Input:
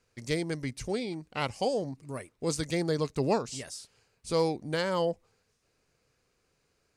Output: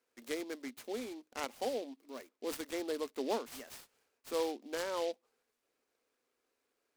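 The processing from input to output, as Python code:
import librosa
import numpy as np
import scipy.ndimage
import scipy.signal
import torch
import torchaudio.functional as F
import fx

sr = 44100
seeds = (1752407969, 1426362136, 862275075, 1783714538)

y = scipy.signal.sosfilt(scipy.signal.ellip(4, 1.0, 40, 240.0, 'highpass', fs=sr, output='sos'), x)
y = fx.noise_mod_delay(y, sr, seeds[0], noise_hz=3500.0, depth_ms=0.046)
y = F.gain(torch.from_numpy(y), -7.0).numpy()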